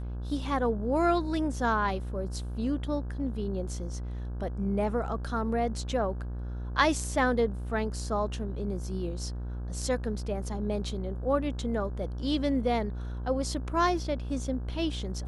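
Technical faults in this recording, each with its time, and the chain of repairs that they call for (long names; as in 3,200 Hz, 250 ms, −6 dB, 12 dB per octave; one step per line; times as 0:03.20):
mains buzz 60 Hz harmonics 28 −35 dBFS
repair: hum removal 60 Hz, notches 28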